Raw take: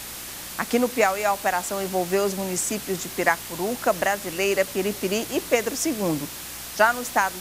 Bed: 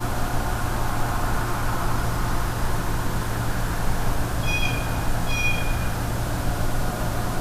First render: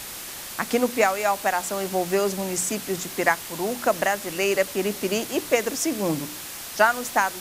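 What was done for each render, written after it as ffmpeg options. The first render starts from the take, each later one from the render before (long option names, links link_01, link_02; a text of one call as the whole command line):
ffmpeg -i in.wav -af "bandreject=frequency=60:width_type=h:width=4,bandreject=frequency=120:width_type=h:width=4,bandreject=frequency=180:width_type=h:width=4,bandreject=frequency=240:width_type=h:width=4,bandreject=frequency=300:width_type=h:width=4" out.wav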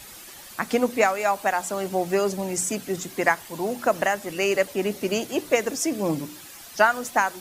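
ffmpeg -i in.wav -af "afftdn=noise_reduction=10:noise_floor=-37" out.wav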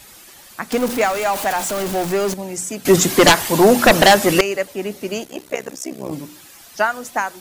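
ffmpeg -i in.wav -filter_complex "[0:a]asettb=1/sr,asplit=3[link_01][link_02][link_03];[link_01]atrim=end=0.724[link_04];[link_02]atrim=start=0.72:end=2.34,asetpts=PTS-STARTPTS,afade=type=in:duration=0.004:curve=qsin,afade=type=out:start_time=1.616:duration=0.004:curve=qsin,aeval=exprs='val(0)+0.5*0.0891*sgn(val(0))':channel_layout=same[link_05];[link_03]atrim=start=2.336[link_06];[link_04][link_05]acrossfade=duration=0.004:curve1=hsin:curve2=qsin[link_07];[link_07][link_06]acrossfade=duration=0.004:curve1=qsin:curve2=hsin,asettb=1/sr,asplit=3[link_08][link_09][link_10];[link_08]atrim=end=2.854[link_11];[link_09]atrim=start=2.85:end=4.41,asetpts=PTS-STARTPTS,afade=type=in:duration=0.004:curve=qsin,afade=type=out:start_time=1.556:duration=0.004:curve=qsin,aeval=exprs='0.596*sin(PI/2*5.01*val(0)/0.596)':channel_layout=same[link_12];[link_10]atrim=start=4.406[link_13];[link_11][link_12]acrossfade=duration=0.004:curve1=hsin:curve2=qsin[link_14];[link_14][link_13]acrossfade=duration=0.004:curve1=qsin:curve2=hsin,asplit=3[link_15][link_16][link_17];[link_15]afade=type=out:start_time=5.23:duration=0.02[link_18];[link_16]tremolo=f=65:d=0.974,afade=type=in:start_time=5.23:duration=0.02,afade=type=out:start_time=6.11:duration=0.02[link_19];[link_17]afade=type=in:start_time=6.11:duration=0.02[link_20];[link_18][link_19][link_20]amix=inputs=3:normalize=0" out.wav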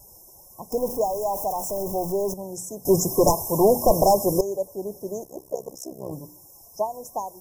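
ffmpeg -i in.wav -af "afftfilt=real='re*(1-between(b*sr/4096,1100,5100))':imag='im*(1-between(b*sr/4096,1100,5100))':win_size=4096:overlap=0.75,equalizer=frequency=250:width_type=o:width=1:gain=-12,equalizer=frequency=1000:width_type=o:width=1:gain=-6,equalizer=frequency=2000:width_type=o:width=1:gain=-11,equalizer=frequency=4000:width_type=o:width=1:gain=-3,equalizer=frequency=8000:width_type=o:width=1:gain=-9" out.wav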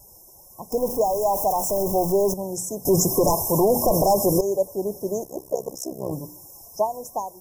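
ffmpeg -i in.wav -af "alimiter=limit=-15.5dB:level=0:latency=1:release=42,dynaudnorm=framelen=380:gausssize=5:maxgain=5dB" out.wav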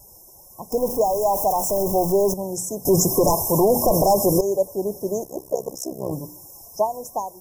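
ffmpeg -i in.wav -af "volume=1.5dB" out.wav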